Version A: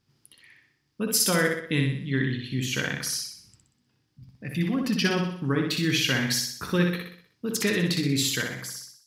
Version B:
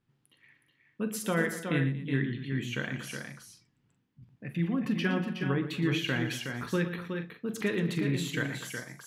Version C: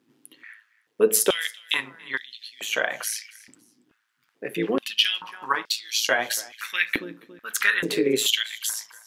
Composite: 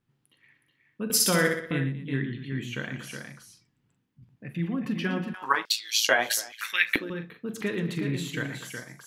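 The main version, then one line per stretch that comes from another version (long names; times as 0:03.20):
B
0:01.10–0:01.71: punch in from A
0:05.34–0:07.10: punch in from C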